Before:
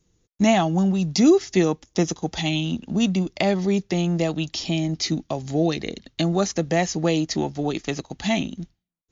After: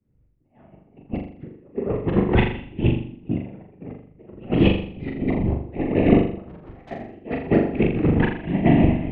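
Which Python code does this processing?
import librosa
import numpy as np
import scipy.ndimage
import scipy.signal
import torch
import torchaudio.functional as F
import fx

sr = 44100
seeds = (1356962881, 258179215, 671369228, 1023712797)

p1 = fx.reverse_delay_fb(x, sr, ms=118, feedback_pct=63, wet_db=-6.5)
p2 = scipy.signal.sosfilt(scipy.signal.butter(8, 2700.0, 'lowpass', fs=sr, output='sos'), p1)
p3 = fx.low_shelf(p2, sr, hz=440.0, db=9.5)
p4 = fx.over_compress(p3, sr, threshold_db=-25.0, ratio=-0.5)
p5 = fx.whisperise(p4, sr, seeds[0])
p6 = fx.tube_stage(p5, sr, drive_db=30.0, bias=0.45, at=(6.39, 6.91))
p7 = p6 + fx.room_flutter(p6, sr, wall_m=7.1, rt60_s=0.7, dry=0)
p8 = fx.band_widen(p7, sr, depth_pct=70)
y = F.gain(torch.from_numpy(p8), -1.0).numpy()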